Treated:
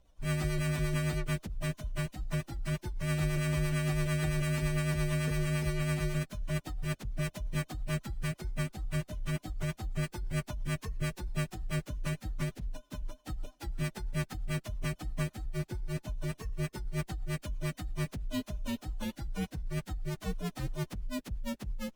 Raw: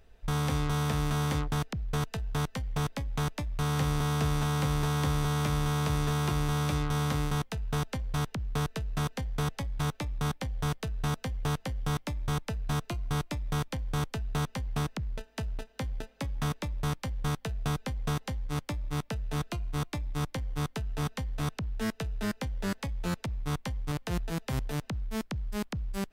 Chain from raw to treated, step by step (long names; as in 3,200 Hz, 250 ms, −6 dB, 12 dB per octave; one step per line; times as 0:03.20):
partials spread apart or drawn together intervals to 127%
rotating-speaker cabinet horn 7.5 Hz
speed change +19%